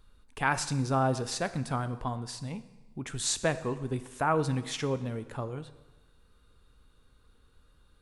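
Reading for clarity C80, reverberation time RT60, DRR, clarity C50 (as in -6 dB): 16.0 dB, 1.1 s, 12.0 dB, 14.0 dB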